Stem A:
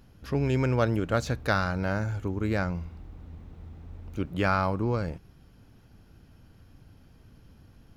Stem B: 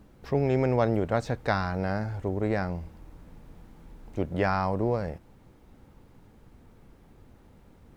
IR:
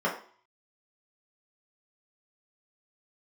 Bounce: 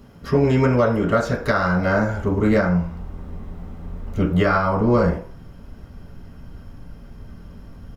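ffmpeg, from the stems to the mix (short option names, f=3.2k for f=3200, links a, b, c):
-filter_complex "[0:a]highshelf=f=3.9k:g=7.5,volume=2dB,asplit=2[a][b];[b]volume=-3dB[c];[1:a]asubboost=boost=7:cutoff=130,adelay=1.8,volume=1dB[d];[2:a]atrim=start_sample=2205[e];[c][e]afir=irnorm=-1:irlink=0[f];[a][d][f]amix=inputs=3:normalize=0,alimiter=limit=-7.5dB:level=0:latency=1:release=408"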